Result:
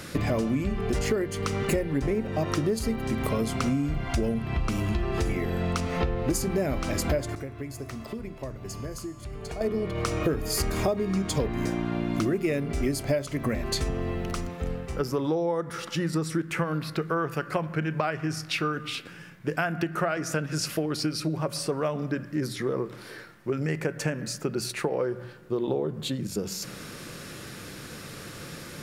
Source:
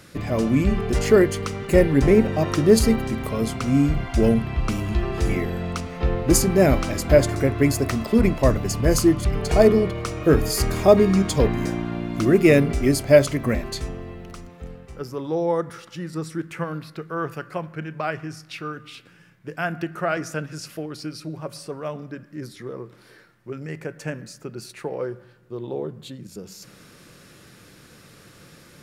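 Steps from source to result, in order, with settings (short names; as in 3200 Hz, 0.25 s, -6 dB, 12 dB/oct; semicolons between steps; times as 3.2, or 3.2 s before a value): notches 60/120/180 Hz; compressor 16:1, threshold -31 dBFS, peak gain reduction 24 dB; 7.35–9.61 resonator 130 Hz, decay 1.3 s, harmonics odd, mix 70%; gain +8 dB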